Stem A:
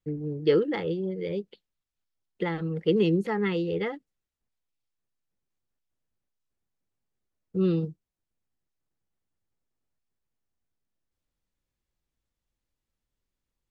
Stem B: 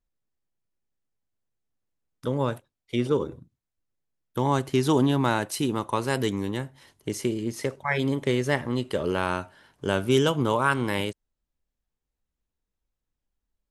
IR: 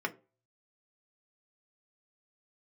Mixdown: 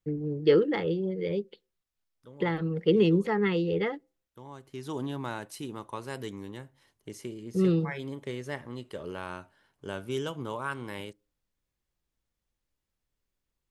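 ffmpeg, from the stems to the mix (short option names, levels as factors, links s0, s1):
-filter_complex "[0:a]volume=1,asplit=2[s0][s1];[s1]volume=0.0794[s2];[1:a]volume=0.237,afade=t=in:st=4.62:d=0.43:silence=0.298538,asplit=2[s3][s4];[s4]volume=0.0841[s5];[2:a]atrim=start_sample=2205[s6];[s2][s5]amix=inputs=2:normalize=0[s7];[s7][s6]afir=irnorm=-1:irlink=0[s8];[s0][s3][s8]amix=inputs=3:normalize=0"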